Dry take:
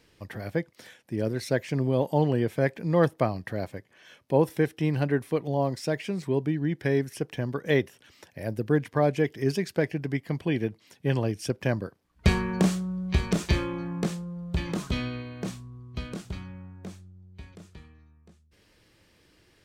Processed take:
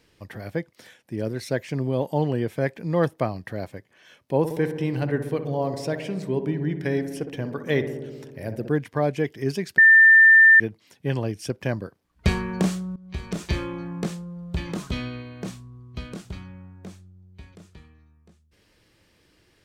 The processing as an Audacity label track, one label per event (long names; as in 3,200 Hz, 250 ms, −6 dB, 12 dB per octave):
4.380000	8.710000	feedback echo with a low-pass in the loop 62 ms, feedback 82%, low-pass 1,500 Hz, level −9 dB
9.780000	10.600000	beep over 1,790 Hz −9 dBFS
12.960000	13.660000	fade in, from −17.5 dB